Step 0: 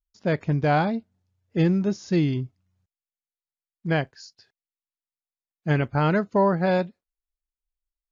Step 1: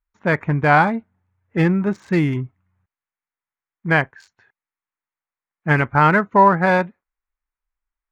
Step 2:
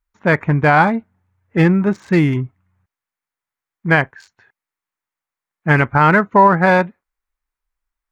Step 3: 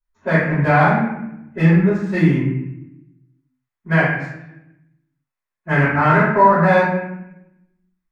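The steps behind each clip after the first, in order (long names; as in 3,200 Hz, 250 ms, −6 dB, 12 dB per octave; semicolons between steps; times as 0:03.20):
adaptive Wiener filter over 9 samples; flat-topped bell 1,400 Hz +9.5 dB; level +3.5 dB
boost into a limiter +5 dB; level −1 dB
convolution reverb RT60 0.85 s, pre-delay 3 ms, DRR −12 dB; level −16.5 dB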